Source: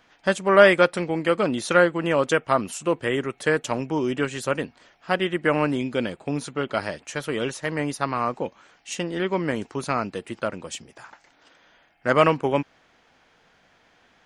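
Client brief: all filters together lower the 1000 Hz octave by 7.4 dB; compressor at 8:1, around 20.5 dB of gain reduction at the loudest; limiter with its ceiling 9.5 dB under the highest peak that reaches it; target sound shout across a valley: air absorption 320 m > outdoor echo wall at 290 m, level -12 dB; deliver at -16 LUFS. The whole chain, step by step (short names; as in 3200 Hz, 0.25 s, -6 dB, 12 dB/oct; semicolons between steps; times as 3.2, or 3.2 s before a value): bell 1000 Hz -8 dB; compressor 8:1, threshold -33 dBFS; limiter -29 dBFS; air absorption 320 m; outdoor echo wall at 290 m, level -12 dB; gain +26 dB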